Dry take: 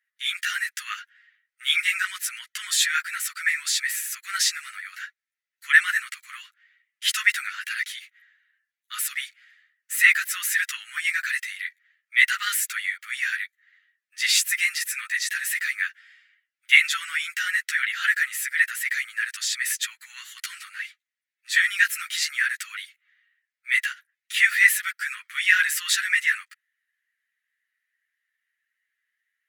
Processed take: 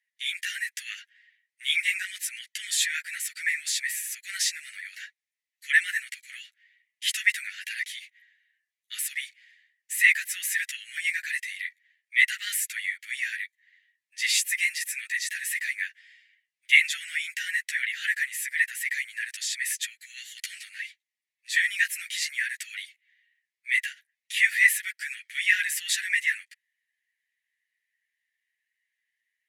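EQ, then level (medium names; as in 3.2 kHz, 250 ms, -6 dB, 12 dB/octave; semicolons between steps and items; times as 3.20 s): dynamic bell 4.5 kHz, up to -5 dB, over -36 dBFS, Q 0.77; steep high-pass 1.8 kHz 48 dB/octave; low-pass 12 kHz 12 dB/octave; 0.0 dB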